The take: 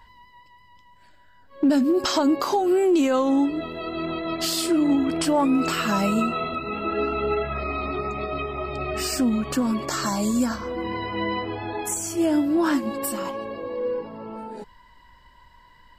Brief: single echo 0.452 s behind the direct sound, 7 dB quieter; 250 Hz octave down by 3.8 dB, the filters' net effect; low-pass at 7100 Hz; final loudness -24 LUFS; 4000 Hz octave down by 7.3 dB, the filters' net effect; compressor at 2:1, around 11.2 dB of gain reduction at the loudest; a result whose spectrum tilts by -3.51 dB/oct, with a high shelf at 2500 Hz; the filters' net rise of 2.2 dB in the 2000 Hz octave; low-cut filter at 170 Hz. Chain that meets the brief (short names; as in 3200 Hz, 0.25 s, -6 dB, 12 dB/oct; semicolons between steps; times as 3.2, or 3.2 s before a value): HPF 170 Hz; LPF 7100 Hz; bell 250 Hz -4 dB; bell 2000 Hz +8 dB; high shelf 2500 Hz -7.5 dB; bell 4000 Hz -5 dB; compressor 2:1, threshold -40 dBFS; echo 0.452 s -7 dB; gain +11 dB